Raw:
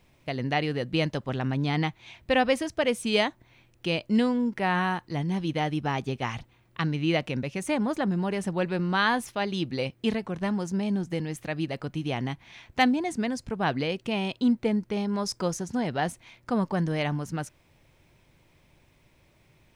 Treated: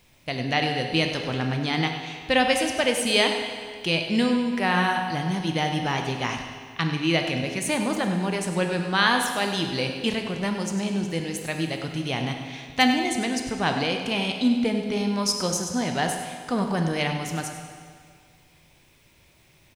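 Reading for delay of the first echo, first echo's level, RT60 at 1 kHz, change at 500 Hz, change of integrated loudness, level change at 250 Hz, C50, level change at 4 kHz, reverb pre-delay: 100 ms, −12.0 dB, 2.0 s, +2.0 dB, +3.0 dB, +2.0 dB, 4.5 dB, +8.0 dB, 12 ms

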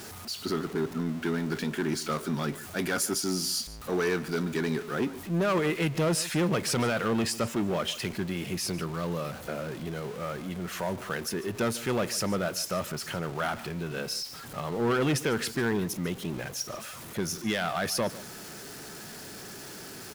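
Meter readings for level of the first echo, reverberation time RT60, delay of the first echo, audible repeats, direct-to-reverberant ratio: −17.5 dB, no reverb audible, 146 ms, 1, no reverb audible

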